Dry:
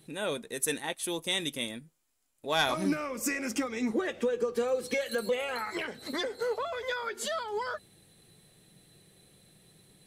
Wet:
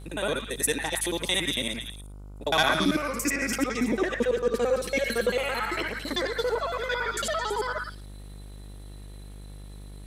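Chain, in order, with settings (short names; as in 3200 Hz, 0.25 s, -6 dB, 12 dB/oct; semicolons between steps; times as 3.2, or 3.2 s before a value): local time reversal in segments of 56 ms; delay with a stepping band-pass 0.11 s, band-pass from 1600 Hz, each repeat 1.4 oct, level -1.5 dB; buzz 50 Hz, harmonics 30, -47 dBFS -8 dB/oct; gain +4.5 dB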